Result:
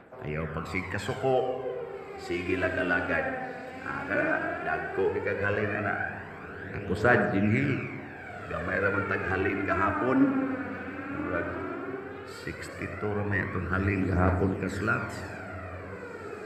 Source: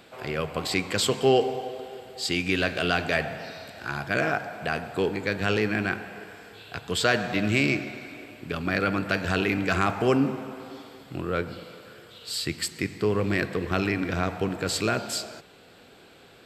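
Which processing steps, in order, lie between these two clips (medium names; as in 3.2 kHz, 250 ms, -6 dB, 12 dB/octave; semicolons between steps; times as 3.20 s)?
echo that smears into a reverb 1629 ms, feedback 49%, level -10 dB; on a send at -6.5 dB: reverberation RT60 1.2 s, pre-delay 58 ms; on the sum: phaser 0.14 Hz, delay 4.1 ms, feedback 56%; resonant high shelf 2.6 kHz -13 dB, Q 1.5; trim -5.5 dB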